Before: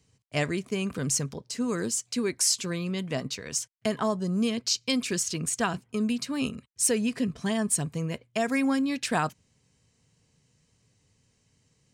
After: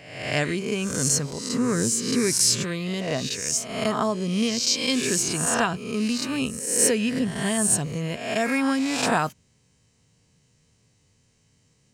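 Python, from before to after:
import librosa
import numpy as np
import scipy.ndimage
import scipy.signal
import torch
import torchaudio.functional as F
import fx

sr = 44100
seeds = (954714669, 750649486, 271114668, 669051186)

y = fx.spec_swells(x, sr, rise_s=0.85)
y = fx.peak_eq(y, sr, hz=130.0, db=10.5, octaves=1.1, at=(1.53, 2.64))
y = y * 10.0 ** (1.5 / 20.0)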